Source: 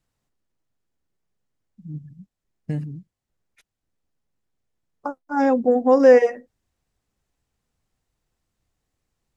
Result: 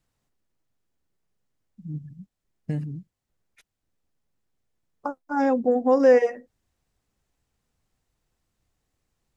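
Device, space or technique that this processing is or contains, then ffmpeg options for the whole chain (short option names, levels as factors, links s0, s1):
parallel compression: -filter_complex "[0:a]asplit=2[s0][s1];[s1]acompressor=threshold=0.0355:ratio=6,volume=0.944[s2];[s0][s2]amix=inputs=2:normalize=0,volume=0.562"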